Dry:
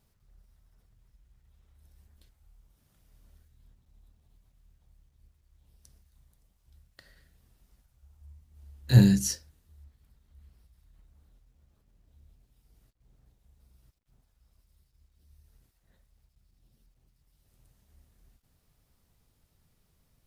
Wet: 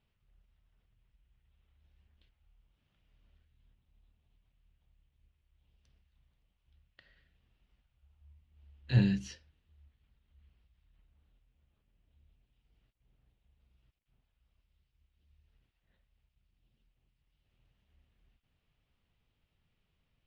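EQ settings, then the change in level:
low-pass with resonance 2,900 Hz, resonance Q 2.9
−8.5 dB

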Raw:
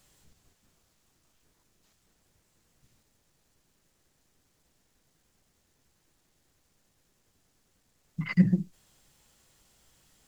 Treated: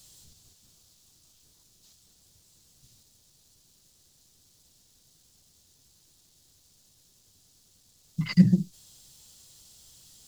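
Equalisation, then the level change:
parametric band 100 Hz +7 dB 1.7 octaves
high shelf with overshoot 2,900 Hz +11 dB, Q 1.5
0.0 dB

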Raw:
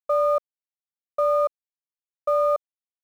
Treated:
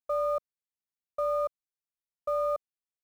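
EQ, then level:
bass and treble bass +8 dB, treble +3 dB
−8.0 dB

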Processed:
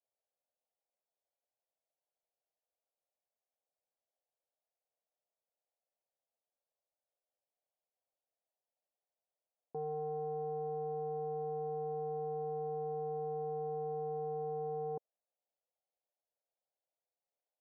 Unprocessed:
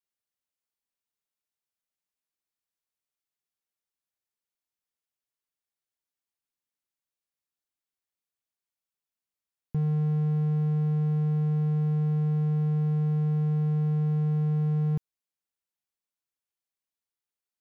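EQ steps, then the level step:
flat-topped band-pass 620 Hz, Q 2.2
high-frequency loss of the air 490 metres
+12.0 dB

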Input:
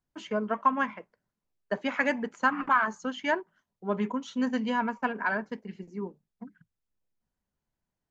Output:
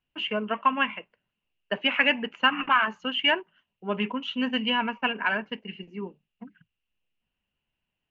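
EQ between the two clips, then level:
low-pass with resonance 2,800 Hz, resonance Q 13
0.0 dB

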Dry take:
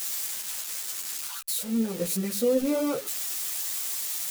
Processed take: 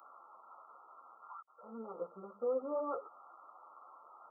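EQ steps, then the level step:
resonant band-pass 950 Hz, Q 0.62
linear-phase brick-wall low-pass 1,400 Hz
first difference
+15.0 dB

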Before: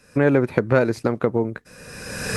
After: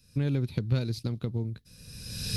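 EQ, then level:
parametric band 7,500 Hz −11.5 dB 0.92 octaves
dynamic equaliser 3,900 Hz, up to +5 dB, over −45 dBFS, Q 1.5
drawn EQ curve 110 Hz 0 dB, 580 Hz −23 dB, 1,800 Hz −22 dB, 3,800 Hz +1 dB
0.0 dB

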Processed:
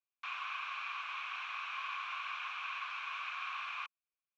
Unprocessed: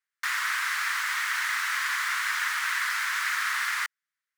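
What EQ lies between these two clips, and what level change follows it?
formant filter a
loudspeaker in its box 470–5,300 Hz, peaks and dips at 730 Hz −10 dB, 1,300 Hz −9 dB, 1,800 Hz −8 dB, 4,800 Hz −9 dB
+8.0 dB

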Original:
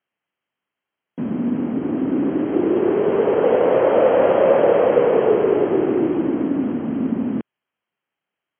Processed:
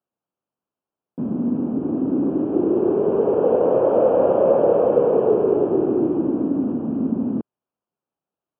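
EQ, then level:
moving average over 22 samples
high-frequency loss of the air 160 metres
0.0 dB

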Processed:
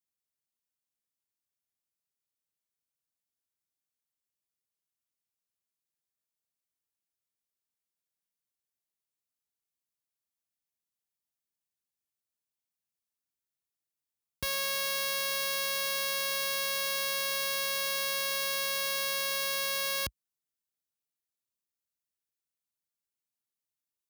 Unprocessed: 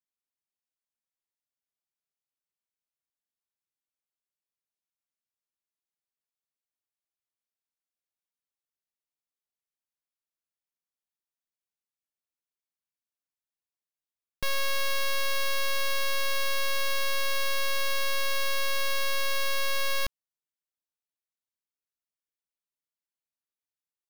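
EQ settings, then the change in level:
high-pass filter 56 Hz 24 dB per octave
low-shelf EQ 330 Hz +9 dB
high-shelf EQ 4,000 Hz +9 dB
−5.0 dB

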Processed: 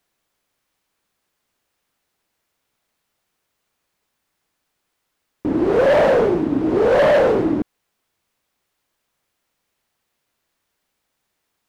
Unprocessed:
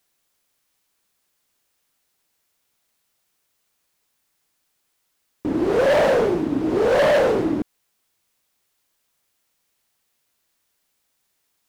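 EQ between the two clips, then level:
high-shelf EQ 3,600 Hz −9.5 dB
+3.0 dB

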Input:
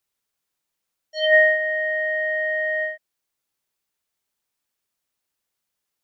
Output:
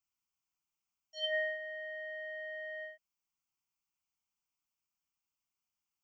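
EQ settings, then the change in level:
phaser with its sweep stopped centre 2,600 Hz, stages 8
−7.5 dB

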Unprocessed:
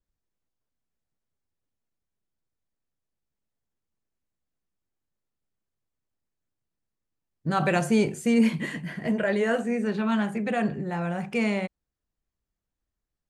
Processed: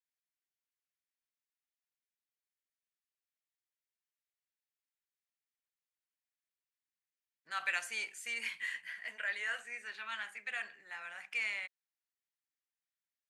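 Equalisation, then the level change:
high-pass with resonance 1,900 Hz, resonance Q 1.7
−7.5 dB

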